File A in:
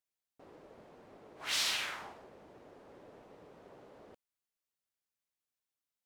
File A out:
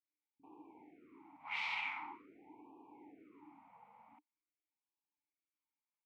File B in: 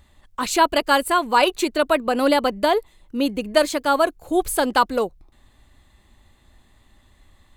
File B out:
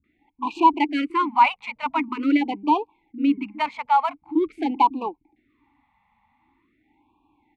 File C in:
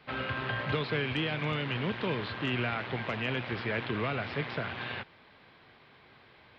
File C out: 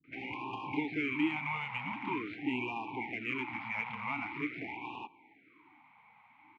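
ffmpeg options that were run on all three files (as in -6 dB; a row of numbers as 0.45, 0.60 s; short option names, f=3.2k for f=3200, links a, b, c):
-filter_complex "[0:a]equalizer=f=1.5k:w=0.94:g=10,adynamicsmooth=sensitivity=2:basefreq=3k,asplit=3[a][b][c];[a]bandpass=f=300:t=q:w=8,volume=0dB[d];[b]bandpass=f=870:t=q:w=8,volume=-6dB[e];[c]bandpass=f=2.24k:t=q:w=8,volume=-9dB[f];[d][e][f]amix=inputs=3:normalize=0,acrossover=split=220[g][h];[h]adelay=40[i];[g][i]amix=inputs=2:normalize=0,afftfilt=real='re*(1-between(b*sr/1024,320*pow(1700/320,0.5+0.5*sin(2*PI*0.45*pts/sr))/1.41,320*pow(1700/320,0.5+0.5*sin(2*PI*0.45*pts/sr))*1.41))':imag='im*(1-between(b*sr/1024,320*pow(1700/320,0.5+0.5*sin(2*PI*0.45*pts/sr))/1.41,320*pow(1700/320,0.5+0.5*sin(2*PI*0.45*pts/sr))*1.41))':win_size=1024:overlap=0.75,volume=8.5dB"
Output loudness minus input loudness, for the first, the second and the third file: -7.0, -2.5, -3.5 LU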